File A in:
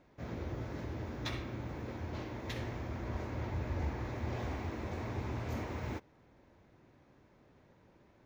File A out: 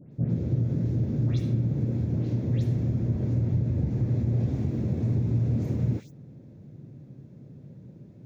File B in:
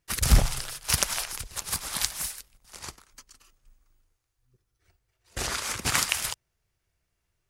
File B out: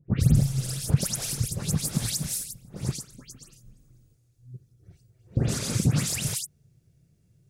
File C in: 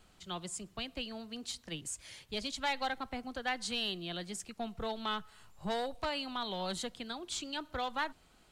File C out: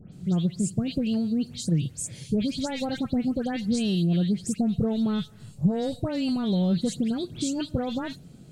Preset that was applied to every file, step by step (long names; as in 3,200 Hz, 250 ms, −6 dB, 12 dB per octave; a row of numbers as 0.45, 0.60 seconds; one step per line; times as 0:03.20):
parametric band 160 Hz +14.5 dB 1.8 octaves
notch filter 3,000 Hz, Q 25
all-pass dispersion highs, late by 131 ms, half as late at 2,600 Hz
downward compressor 3 to 1, threshold −32 dBFS
octave-band graphic EQ 125/250/500/1,000/2,000/8,000 Hz +11/+4/+6/−9/−4/+4 dB
loudness normalisation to −27 LKFS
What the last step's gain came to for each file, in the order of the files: 0.0, +2.5, +4.0 decibels